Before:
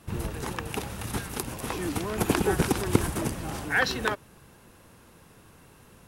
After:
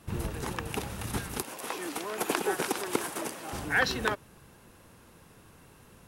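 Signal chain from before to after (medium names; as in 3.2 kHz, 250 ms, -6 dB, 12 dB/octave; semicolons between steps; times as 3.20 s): 1.42–3.53 s: high-pass 400 Hz 12 dB/octave; trim -1.5 dB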